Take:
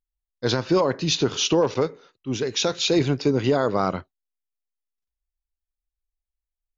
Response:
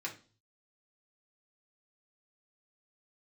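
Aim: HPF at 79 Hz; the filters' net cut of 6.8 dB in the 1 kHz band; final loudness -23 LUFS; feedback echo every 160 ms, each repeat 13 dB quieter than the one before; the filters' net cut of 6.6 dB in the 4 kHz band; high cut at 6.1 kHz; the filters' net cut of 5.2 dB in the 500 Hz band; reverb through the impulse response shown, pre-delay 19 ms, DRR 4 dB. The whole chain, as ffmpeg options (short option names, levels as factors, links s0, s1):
-filter_complex "[0:a]highpass=79,lowpass=6100,equalizer=f=500:t=o:g=-5,equalizer=f=1000:t=o:g=-7,equalizer=f=4000:t=o:g=-7,aecho=1:1:160|320|480:0.224|0.0493|0.0108,asplit=2[s0][s1];[1:a]atrim=start_sample=2205,adelay=19[s2];[s1][s2]afir=irnorm=-1:irlink=0,volume=0.531[s3];[s0][s3]amix=inputs=2:normalize=0,volume=1.33"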